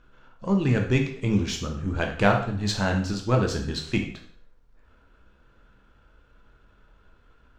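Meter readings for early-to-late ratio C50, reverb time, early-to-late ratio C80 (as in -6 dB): 7.0 dB, 0.55 s, 11.0 dB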